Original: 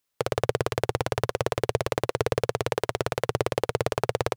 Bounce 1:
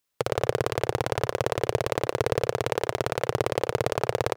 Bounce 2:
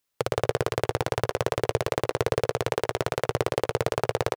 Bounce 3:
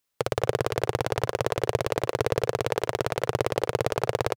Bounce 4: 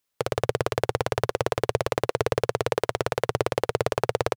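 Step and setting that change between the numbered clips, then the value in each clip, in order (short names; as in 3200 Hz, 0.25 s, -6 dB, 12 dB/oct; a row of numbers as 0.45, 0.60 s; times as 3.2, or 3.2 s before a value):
speakerphone echo, time: 90, 130, 210, 400 ms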